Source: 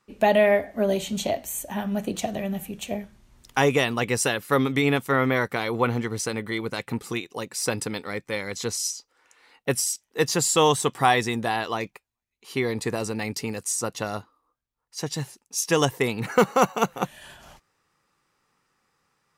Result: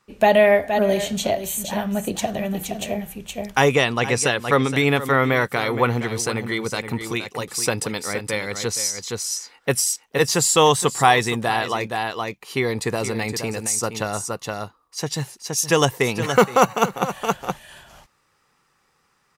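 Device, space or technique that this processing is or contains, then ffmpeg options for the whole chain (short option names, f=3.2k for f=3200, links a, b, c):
ducked delay: -filter_complex "[0:a]asettb=1/sr,asplit=3[a][b][c];[a]atrim=end=3.754[d];[b]atrim=start=3.75:end=4.7,asetpts=PTS-STARTPTS,afade=t=in:d=0.004:c=qsin,afade=t=out:st=0.946:d=0.004:c=qsin,lowpass=8.5k[e];[c]atrim=start=4.696[f];[d][e]acrossfade=d=0.004:c1=hsin:c2=qsin[g];[g][f]acrossfade=d=0.004:c1=qsin:c2=hsin,equalizer=f=270:t=o:w=0.92:g=-3.5,asplit=3[h][i][j];[i]adelay=469,volume=-3dB[k];[j]apad=whole_len=875148[l];[k][l]sidechaincompress=threshold=-35dB:ratio=6:attack=16:release=170[m];[h][m]amix=inputs=2:normalize=0,volume=4.5dB"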